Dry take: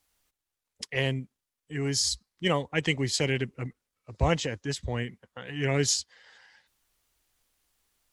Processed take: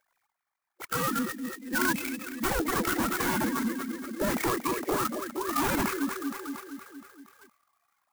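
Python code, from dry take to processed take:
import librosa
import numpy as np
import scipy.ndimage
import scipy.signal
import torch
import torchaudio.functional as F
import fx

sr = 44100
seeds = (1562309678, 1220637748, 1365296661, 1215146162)

p1 = fx.sine_speech(x, sr)
p2 = fx.tilt_eq(p1, sr, slope=3.0)
p3 = fx.echo_feedback(p2, sr, ms=234, feedback_pct=59, wet_db=-11.5)
p4 = fx.spec_erase(p3, sr, start_s=1.56, length_s=0.64, low_hz=570.0, high_hz=2000.0)
p5 = fx.fold_sine(p4, sr, drive_db=18, ceiling_db=-12.5)
p6 = p4 + F.gain(torch.from_numpy(p5), -9.0).numpy()
p7 = fx.high_shelf(p6, sr, hz=3000.0, db=-12.0)
p8 = fx.formant_shift(p7, sr, semitones=-6)
p9 = fx.clock_jitter(p8, sr, seeds[0], jitter_ms=0.064)
y = F.gain(torch.from_numpy(p9), -3.0).numpy()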